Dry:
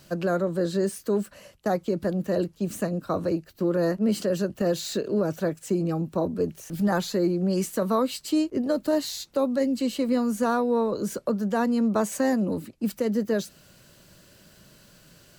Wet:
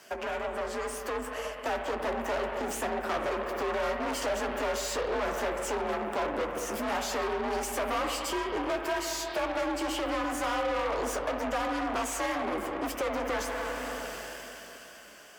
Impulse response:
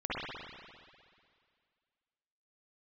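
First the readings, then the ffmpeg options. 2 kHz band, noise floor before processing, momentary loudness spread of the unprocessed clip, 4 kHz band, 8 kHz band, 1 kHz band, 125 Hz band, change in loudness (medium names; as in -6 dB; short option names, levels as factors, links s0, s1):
+4.5 dB, -56 dBFS, 5 LU, +0.5 dB, 0.0 dB, +2.0 dB, -16.5 dB, -5.5 dB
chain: -filter_complex "[0:a]asoftclip=type=hard:threshold=0.0376,dynaudnorm=f=260:g=13:m=5.96,equalizer=f=4000:t=o:w=0.27:g=-14,asplit=2[s0][s1];[1:a]atrim=start_sample=2205[s2];[s1][s2]afir=irnorm=-1:irlink=0,volume=0.266[s3];[s0][s3]amix=inputs=2:normalize=0,flanger=delay=9.3:depth=7.5:regen=-40:speed=2:shape=triangular,bass=f=250:g=-13,treble=f=4000:g=1,acompressor=threshold=0.0126:ratio=3,aeval=exprs='0.0376*(cos(1*acos(clip(val(0)/0.0376,-1,1)))-cos(1*PI/2))+0.00596*(cos(4*acos(clip(val(0)/0.0376,-1,1)))-cos(4*PI/2))':c=same,afreqshift=49,asplit=2[s4][s5];[s5]highpass=f=720:p=1,volume=2.82,asoftclip=type=tanh:threshold=0.0422[s6];[s4][s6]amix=inputs=2:normalize=0,lowpass=f=3500:p=1,volume=0.501,volume=1.68"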